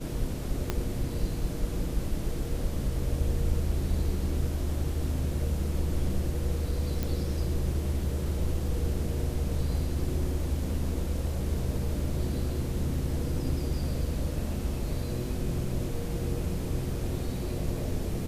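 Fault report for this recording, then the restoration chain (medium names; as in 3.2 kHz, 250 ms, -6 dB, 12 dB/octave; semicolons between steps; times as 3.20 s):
0.70 s: pop -13 dBFS
7.03 s: pop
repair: de-click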